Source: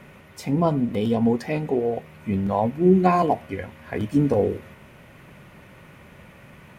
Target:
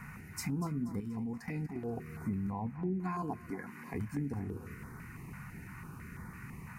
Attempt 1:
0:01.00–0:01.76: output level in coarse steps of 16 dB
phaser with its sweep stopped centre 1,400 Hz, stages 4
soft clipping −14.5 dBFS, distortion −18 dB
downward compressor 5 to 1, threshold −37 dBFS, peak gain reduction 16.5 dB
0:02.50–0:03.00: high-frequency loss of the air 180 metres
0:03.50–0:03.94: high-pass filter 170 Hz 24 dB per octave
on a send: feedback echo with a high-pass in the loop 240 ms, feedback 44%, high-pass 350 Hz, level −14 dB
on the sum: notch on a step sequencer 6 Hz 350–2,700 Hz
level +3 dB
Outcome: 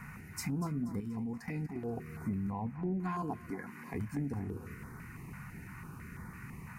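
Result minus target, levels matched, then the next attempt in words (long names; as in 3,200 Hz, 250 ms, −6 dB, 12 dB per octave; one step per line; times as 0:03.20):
soft clipping: distortion +18 dB
0:01.00–0:01.76: output level in coarse steps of 16 dB
phaser with its sweep stopped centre 1,400 Hz, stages 4
soft clipping −4 dBFS, distortion −36 dB
downward compressor 5 to 1, threshold −37 dBFS, peak gain reduction 19 dB
0:02.50–0:03.00: high-frequency loss of the air 180 metres
0:03.50–0:03.94: high-pass filter 170 Hz 24 dB per octave
on a send: feedback echo with a high-pass in the loop 240 ms, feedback 44%, high-pass 350 Hz, level −14 dB
on the sum: notch on a step sequencer 6 Hz 350–2,700 Hz
level +3 dB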